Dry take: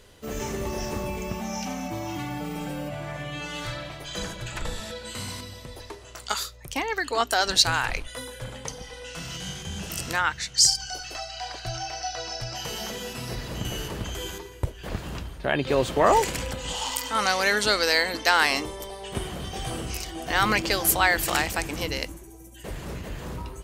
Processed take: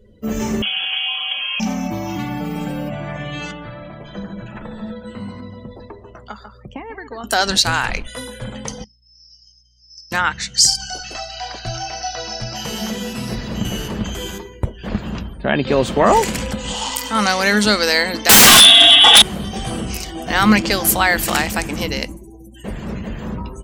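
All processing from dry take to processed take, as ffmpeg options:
-filter_complex "[0:a]asettb=1/sr,asplit=3[a][b][c];[a]atrim=end=0.624[d];[b]atrim=start=0.62:end=1.6,asetpts=PTS-STARTPTS,afade=t=in:d=0.004:c=qsin,afade=t=out:st=0.976:d=0.004:c=qsin,equalizer=f=740:t=o:w=1.8:g=5,lowpass=f=2.9k:t=q:w=0.5098,lowpass=f=2.9k:t=q:w=0.6013,lowpass=f=2.9k:t=q:w=0.9,lowpass=f=2.9k:t=q:w=2.563,afreqshift=-3400[e];[c]atrim=start=1.596[f];[d][e]acrossfade=d=0.004:c1=hsin:c2=qsin[g];[g][f]acrossfade=d=0.004:c1=qsin:c2=hsin,asettb=1/sr,asplit=3[h][i][j];[h]atrim=end=3.514[k];[i]atrim=start=3.51:end=7.24,asetpts=PTS-STARTPTS,afade=t=in:d=0.004:c=qsin,afade=t=out:st=3.726:d=0.004:c=qsin,highshelf=f=2.3k:g=-10.5,aecho=1:1:141:0.316,atrim=end_sample=164493,acrossover=split=110|2500[l][m][n];[l]acompressor=threshold=-49dB:ratio=4[o];[m]acompressor=threshold=-38dB:ratio=4[p];[n]acompressor=threshold=-54dB:ratio=4[q];[o][p][q]amix=inputs=3:normalize=0[r];[j]atrim=start=7.236[s];[k][r]acrossfade=d=0.004:c1=hsin:c2=qsin[t];[t][s]acrossfade=d=0.004:c1=qsin:c2=hsin,asettb=1/sr,asplit=3[u][v][w];[u]atrim=end=8.844[x];[v]atrim=start=8.84:end=10.12,asetpts=PTS-STARTPTS,afade=t=in:d=0.004:c=qsin,afade=t=out:st=1.276:d=0.004:c=qsin,bandpass=f=5.2k:t=q:w=17,aeval=exprs='val(0)+0.000891*(sin(2*PI*60*n/s)+sin(2*PI*2*60*n/s)/2+sin(2*PI*3*60*n/s)/3+sin(2*PI*4*60*n/s)/4+sin(2*PI*5*60*n/s)/5)':c=same[y];[w]atrim=start=10.116[z];[x][y]acrossfade=d=0.004:c1=hsin:c2=qsin[aa];[aa][z]acrossfade=d=0.004:c1=qsin:c2=hsin,asettb=1/sr,asplit=3[ab][ac][ad];[ab]atrim=end=18.294[ae];[ac]atrim=start=18.29:end=19.22,asetpts=PTS-STARTPTS,afade=t=in:d=0.004:c=qsin,afade=t=out:st=0.926:d=0.004:c=qsin,lowpass=f=3.2k:t=q:w=0.5098,lowpass=f=3.2k:t=q:w=0.6013,lowpass=f=3.2k:t=q:w=0.9,lowpass=f=3.2k:t=q:w=2.563,afreqshift=-3800,aecho=1:1:2.6:1,atrim=end_sample=41013,aeval=exprs='0.473*sin(PI/2*10*val(0)/0.473)':c=same[af];[ad]atrim=start=19.216[ag];[ae][af]acrossfade=d=0.004:c1=hsin:c2=qsin[ah];[ah][ag]acrossfade=d=0.004:c1=qsin:c2=hsin,afftdn=nr=27:nf=-49,equalizer=f=210:w=4.8:g=13.5,alimiter=level_in=7dB:limit=-1dB:release=50:level=0:latency=1,volume=-1dB"

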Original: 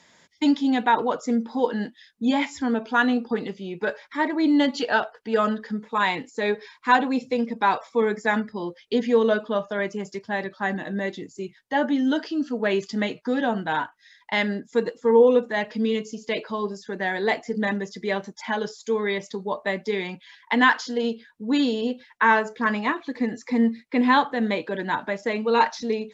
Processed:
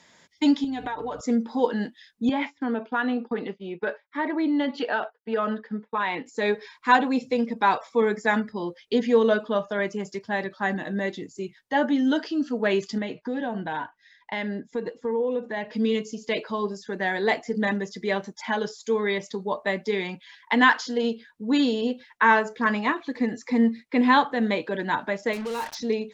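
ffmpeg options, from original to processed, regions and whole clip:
-filter_complex "[0:a]asettb=1/sr,asplit=3[a][b][c];[a]atrim=end=0.644[d];[b]atrim=start=0.64:end=1.21,asetpts=PTS-STARTPTS,afade=t=in:d=0.004:c=qsin,afade=t=out:st=0.566:d=0.004:c=qsin,aeval=exprs='val(0)+0.00794*(sin(2*PI*60*n/s)+sin(2*PI*2*60*n/s)/2+sin(2*PI*3*60*n/s)/3+sin(2*PI*4*60*n/s)/4+sin(2*PI*5*60*n/s)/5)':c=same,aecho=1:1:6.8:0.67,atrim=end_sample=25137,acompressor=threshold=-27dB:ratio=10:attack=3.2:release=140:knee=1:detection=peak[e];[c]atrim=start=1.206[f];[d][e]acrossfade=d=0.004:c1=hsin:c2=qsin[g];[g][f]acrossfade=d=0.004:c1=qsin:c2=hsin,asettb=1/sr,asplit=3[h][i][j];[h]atrim=end=2.294[k];[i]atrim=start=2.29:end=6.26,asetpts=PTS-STARTPTS,afade=t=in:d=0.004:c=qsin,afade=t=out:st=3.966:d=0.004:c=qsin,highpass=200,lowpass=3.1k,acompressor=threshold=-22dB:ratio=2.5:attack=3.2:release=140:knee=1:detection=peak,agate=range=-33dB:threshold=-36dB:ratio=3:release=100:detection=peak[l];[j]atrim=start=6.256[m];[k][l]acrossfade=d=0.004:c1=hsin:c2=qsin[n];[n][m]acrossfade=d=0.004:c1=qsin:c2=hsin,asettb=1/sr,asplit=3[o][p][q];[o]atrim=end=12.984[r];[p]atrim=start=12.98:end=15.73,asetpts=PTS-STARTPTS,afade=t=in:d=0.004:c=qsin,afade=t=out:st=2.746:d=0.004:c=qsin,lowpass=f=2.6k:p=1,bandreject=f=1.3k:w=6.6,acompressor=threshold=-27dB:ratio=2.5:attack=3.2:release=140:knee=1:detection=peak[s];[q]atrim=start=15.726[t];[r][s]acrossfade=d=0.004:c1=hsin:c2=qsin[u];[u][t]acrossfade=d=0.004:c1=qsin:c2=hsin,asettb=1/sr,asplit=3[v][w][x];[v]atrim=end=25.334[y];[w]atrim=start=25.33:end=25.75,asetpts=PTS-STARTPTS,afade=t=in:d=0.004:c=qsin,afade=t=out:st=0.416:d=0.004:c=qsin,acompressor=threshold=-28dB:ratio=4:attack=3.2:release=140:knee=1:detection=peak,acrusher=bits=5:mix=0:aa=0.5[z];[x]atrim=start=25.746[aa];[y][z]acrossfade=d=0.004:c1=hsin:c2=qsin[ab];[ab][aa]acrossfade=d=0.004:c1=qsin:c2=hsin"

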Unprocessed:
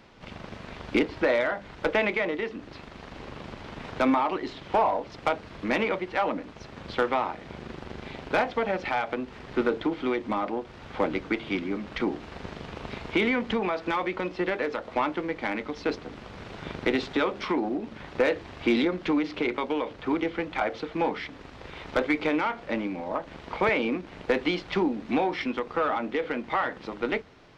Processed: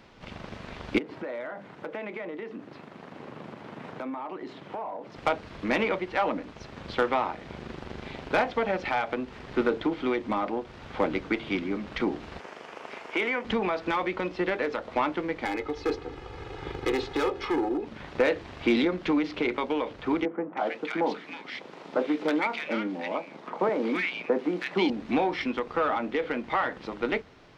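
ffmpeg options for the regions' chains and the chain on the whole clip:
-filter_complex "[0:a]asettb=1/sr,asplit=3[a][b][c];[a]atrim=end=0.984[d];[b]atrim=start=0.98:end=5.16,asetpts=PTS-STARTPTS,afade=t=in:d=0.004:c=qsin,afade=t=out:st=4.176:d=0.004:c=qsin,equalizer=f=5k:t=o:w=2.3:g=-9,acompressor=threshold=-34dB:ratio=4:attack=3.2:release=140:knee=1:detection=peak,highpass=f=130:w=0.5412,highpass=f=130:w=1.3066[e];[c]atrim=start=5.156[f];[d][e]acrossfade=d=0.004:c1=hsin:c2=qsin[g];[g][f]acrossfade=d=0.004:c1=qsin:c2=hsin,asettb=1/sr,asplit=3[h][i][j];[h]atrim=end=12.404[k];[i]atrim=start=12.4:end=13.45,asetpts=PTS-STARTPTS,afade=t=in:d=0.004:c=qsin,afade=t=out:st=1.046:d=0.004:c=qsin,highpass=450,equalizer=f=3.9k:t=o:w=0.48:g=-9[l];[j]atrim=start=13.446[m];[k][l]acrossfade=d=0.004:c1=hsin:c2=qsin[n];[n][m]acrossfade=d=0.004:c1=qsin:c2=hsin,asettb=1/sr,asplit=3[o][p][q];[o]atrim=end=15.454[r];[p]atrim=start=15.45:end=17.86,asetpts=PTS-STARTPTS,afade=t=in:d=0.004:c=qsin,afade=t=out:st=2.406:d=0.004:c=qsin,highshelf=f=2.1k:g=-5.5,asoftclip=type=hard:threshold=-25dB,aecho=1:1:2.4:0.79,atrim=end_sample=106281[s];[q]atrim=start=17.856[t];[r][s]acrossfade=d=0.004:c1=hsin:c2=qsin[u];[u][t]acrossfade=d=0.004:c1=qsin:c2=hsin,asettb=1/sr,asplit=3[v][w][x];[v]atrim=end=20.254[y];[w]atrim=start=20.25:end=24.9,asetpts=PTS-STARTPTS,afade=t=in:d=0.004:c=qsin,afade=t=out:st=4.646:d=0.004:c=qsin,highpass=f=180:w=0.5412,highpass=f=180:w=1.3066,acrossover=split=1400[z][aa];[aa]adelay=320[ab];[z][ab]amix=inputs=2:normalize=0,atrim=end_sample=205065[ac];[x]atrim=start=24.896[ad];[y][ac]acrossfade=d=0.004:c1=hsin:c2=qsin[ae];[ae][ad]acrossfade=d=0.004:c1=qsin:c2=hsin"

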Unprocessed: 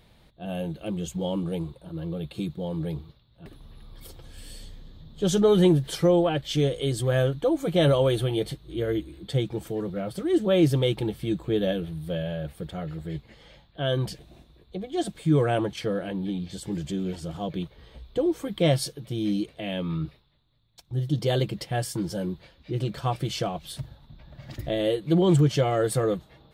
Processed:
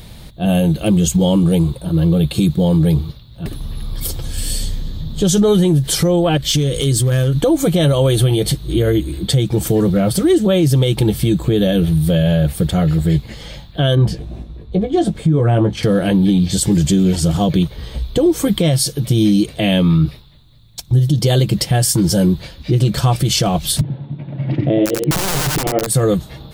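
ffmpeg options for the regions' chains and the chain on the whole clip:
-filter_complex "[0:a]asettb=1/sr,asplit=3[a][b][c];[a]atrim=end=6.374[d];[b]atrim=start=6.37:end=7.36,asetpts=PTS-STARTPTS,afade=t=in:d=0.004:c=qsin,afade=t=out:st=0.986:d=0.004:c=qsin,equalizer=f=730:t=o:w=0.66:g=-8,acompressor=threshold=-31dB:ratio=8:attack=3.2:release=140:knee=1:detection=peak,asoftclip=type=hard:threshold=-28.5dB[e];[c]atrim=start=7.356[f];[d][e]acrossfade=d=0.004:c1=hsin:c2=qsin[g];[g][f]acrossfade=d=0.004:c1=qsin:c2=hsin,asettb=1/sr,asplit=3[h][i][j];[h]atrim=end=13.954[k];[i]atrim=start=13.95:end=15.83,asetpts=PTS-STARTPTS,afade=t=in:d=0.004:c=qsin,afade=t=out:st=1.876:d=0.004:c=qsin,lowpass=f=1.1k:p=1,asplit=2[l][m];[m]adelay=18,volume=-7dB[n];[l][n]amix=inputs=2:normalize=0,atrim=end_sample=82908[o];[j]atrim=start=15.826[p];[k][o]acrossfade=d=0.004:c1=hsin:c2=qsin[q];[q][p]acrossfade=d=0.004:c1=qsin:c2=hsin,asettb=1/sr,asplit=3[r][s][t];[r]atrim=end=23.814[u];[s]atrim=start=23.81:end=25.87,asetpts=PTS-STARTPTS,afade=t=in:d=0.004:c=qsin,afade=t=out:st=2.056:d=0.004:c=qsin,highpass=f=130:w=0.5412,highpass=f=130:w=1.3066,equalizer=f=140:t=q:w=4:g=5,equalizer=f=300:t=q:w=4:g=9,equalizer=f=430:t=q:w=4:g=5,equalizer=f=1.2k:t=q:w=4:g=-7,equalizer=f=1.7k:t=q:w=4:g=-8,lowpass=f=2.5k:w=0.5412,lowpass=f=2.5k:w=1.3066,aeval=exprs='(mod(4.47*val(0)+1,2)-1)/4.47':c=same,aecho=1:1:89:0.531,atrim=end_sample=90846[v];[t]atrim=start=25.866[w];[u][v]acrossfade=d=0.004:c1=hsin:c2=qsin[x];[x][w]acrossfade=d=0.004:c1=qsin:c2=hsin,bass=f=250:g=7,treble=f=4k:g=10,acompressor=threshold=-24dB:ratio=6,alimiter=level_in=20dB:limit=-1dB:release=50:level=0:latency=1,volume=-5dB"

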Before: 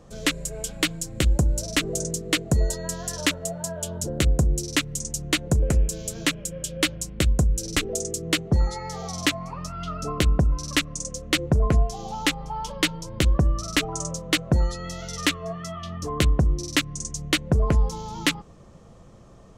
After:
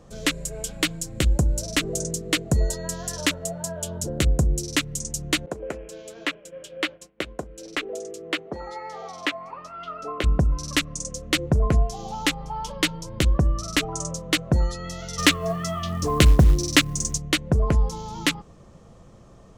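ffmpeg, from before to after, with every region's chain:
-filter_complex "[0:a]asettb=1/sr,asplit=3[a][b][c];[a]atrim=end=5.464[d];[b]atrim=start=5.46:end=10.24,asetpts=PTS-STARTPTS,afade=t=in:d=0.004:c=qsin,afade=t=out:st=4.776:d=0.004:c=qsin,acrossover=split=300 3400:gain=0.0631 1 0.158[e][f][g];[e][f][g]amix=inputs=3:normalize=0,agate=range=-33dB:threshold=-42dB:ratio=3:release=100:detection=peak[h];[c]atrim=start=10.236[i];[d][h]acrossfade=d=0.004:c1=hsin:c2=qsin[j];[j][i]acrossfade=d=0.004:c1=qsin:c2=hsin,asettb=1/sr,asplit=3[k][l][m];[k]atrim=end=15.184[n];[l]atrim=start=15.18:end=17.18,asetpts=PTS-STARTPTS,afade=t=in:d=0.004:c=qsin,afade=t=out:st=1.996:d=0.004:c=qsin,acontrast=50,acrusher=bits=7:mode=log:mix=0:aa=0.000001[o];[m]atrim=start=17.176[p];[n][o]acrossfade=d=0.004:c1=hsin:c2=qsin[q];[q][p]acrossfade=d=0.004:c1=qsin:c2=hsin"

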